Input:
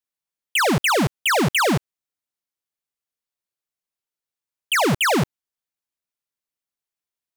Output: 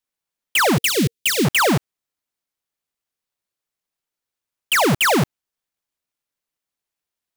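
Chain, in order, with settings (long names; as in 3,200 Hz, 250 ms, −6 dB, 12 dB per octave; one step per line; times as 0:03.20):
each half-wave held at its own peak
0:00.77–0:01.45: drawn EQ curve 460 Hz 0 dB, 790 Hz −28 dB, 1,900 Hz −5 dB, 3,700 Hz +2 dB
level +2 dB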